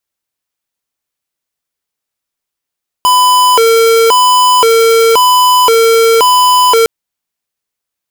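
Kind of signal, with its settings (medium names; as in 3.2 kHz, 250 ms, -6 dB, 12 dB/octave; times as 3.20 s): siren hi-lo 455–1000 Hz 0.95 per s square -7 dBFS 3.81 s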